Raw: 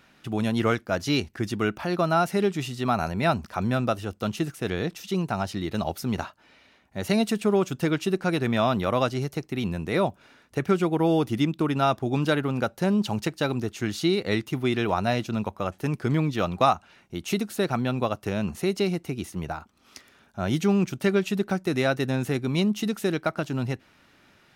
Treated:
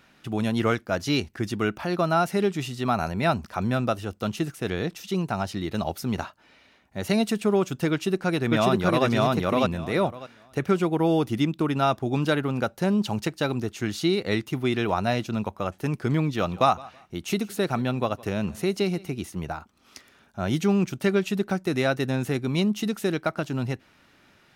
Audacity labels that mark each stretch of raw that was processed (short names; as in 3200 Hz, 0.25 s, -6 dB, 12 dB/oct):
7.910000	9.060000	echo throw 0.6 s, feedback 15%, level 0 dB
16.210000	19.200000	feedback echo 0.163 s, feedback 24%, level -22 dB